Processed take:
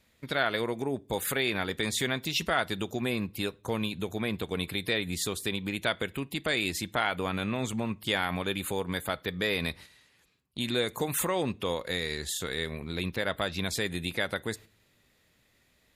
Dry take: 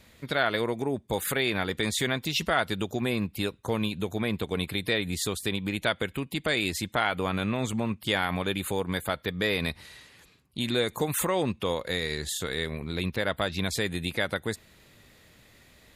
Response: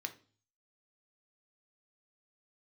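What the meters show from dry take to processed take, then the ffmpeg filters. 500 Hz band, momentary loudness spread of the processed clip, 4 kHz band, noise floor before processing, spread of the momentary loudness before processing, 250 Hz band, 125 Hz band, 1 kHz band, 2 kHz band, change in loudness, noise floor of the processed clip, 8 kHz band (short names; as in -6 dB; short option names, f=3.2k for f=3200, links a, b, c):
-2.5 dB, 5 LU, -1.5 dB, -58 dBFS, 5 LU, -2.5 dB, -3.5 dB, -2.0 dB, -1.5 dB, -2.0 dB, -68 dBFS, -1.0 dB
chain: -filter_complex "[0:a]agate=range=-9dB:threshold=-44dB:ratio=16:detection=peak,asplit=2[a][b];[1:a]atrim=start_sample=2205,highshelf=f=5.7k:g=7.5[c];[b][c]afir=irnorm=-1:irlink=0,volume=-11dB[d];[a][d]amix=inputs=2:normalize=0,volume=-3.5dB"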